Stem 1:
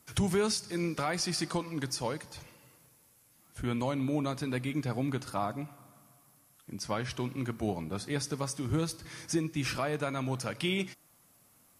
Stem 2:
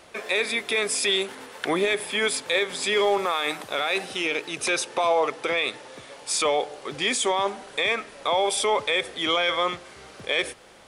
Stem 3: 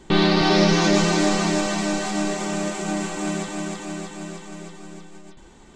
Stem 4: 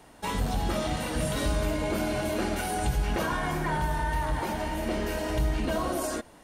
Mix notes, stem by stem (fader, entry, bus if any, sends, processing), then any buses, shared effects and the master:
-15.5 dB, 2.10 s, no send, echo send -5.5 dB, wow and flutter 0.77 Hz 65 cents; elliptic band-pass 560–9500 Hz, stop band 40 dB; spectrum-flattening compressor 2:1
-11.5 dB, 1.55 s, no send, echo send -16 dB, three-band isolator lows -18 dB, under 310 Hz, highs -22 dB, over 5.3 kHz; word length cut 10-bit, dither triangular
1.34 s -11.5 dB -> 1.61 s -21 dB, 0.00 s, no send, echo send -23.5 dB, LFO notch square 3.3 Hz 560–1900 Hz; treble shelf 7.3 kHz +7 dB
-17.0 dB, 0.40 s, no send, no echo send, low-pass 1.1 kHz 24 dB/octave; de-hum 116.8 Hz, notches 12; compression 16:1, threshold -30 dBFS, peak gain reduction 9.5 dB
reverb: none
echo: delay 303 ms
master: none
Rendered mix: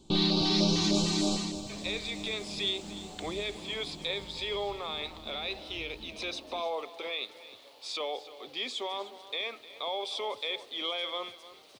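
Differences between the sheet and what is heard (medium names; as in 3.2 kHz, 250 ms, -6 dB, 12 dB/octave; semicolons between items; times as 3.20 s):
stem 1 -15.5 dB -> -25.5 dB; master: extra fifteen-band graphic EQ 100 Hz +9 dB, 250 Hz +5 dB, 1.6 kHz -10 dB, 4 kHz +10 dB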